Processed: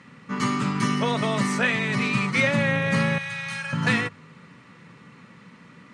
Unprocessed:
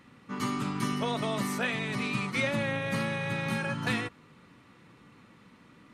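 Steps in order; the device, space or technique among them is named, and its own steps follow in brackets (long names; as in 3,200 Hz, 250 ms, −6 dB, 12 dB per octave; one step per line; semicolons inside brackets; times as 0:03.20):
car door speaker (loudspeaker in its box 95–8,700 Hz, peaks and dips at 160 Hz +6 dB, 320 Hz −7 dB, 740 Hz −4 dB, 1,900 Hz +3 dB, 3,600 Hz −3 dB)
mains-hum notches 50/100/150 Hz
0:03.18–0:03.73: guitar amp tone stack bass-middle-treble 10-0-10
level +7.5 dB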